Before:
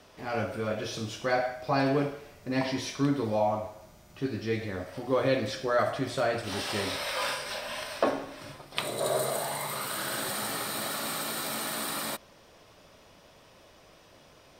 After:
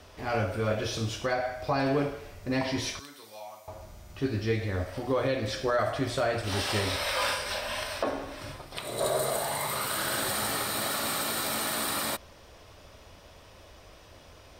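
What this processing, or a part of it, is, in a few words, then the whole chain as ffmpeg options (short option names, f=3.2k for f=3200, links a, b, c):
car stereo with a boomy subwoofer: -filter_complex "[0:a]asettb=1/sr,asplit=3[a][b][c];[a]atrim=end=2.994[d];[b]atrim=start=2.99:end=3.68,asetpts=PTS-STARTPTS,afade=t=in:d=0.004:c=qsin,afade=t=out:st=0.686:d=0.004:c=qsin,aderivative[e];[c]atrim=start=3.676[f];[d][e]acrossfade=d=0.004:c1=hsin:c2=qsin[g];[g][f]acrossfade=d=0.004:c1=qsin:c2=hsin,lowshelf=f=110:t=q:w=1.5:g=8,alimiter=limit=-20.5dB:level=0:latency=1:release=275,volume=3dB"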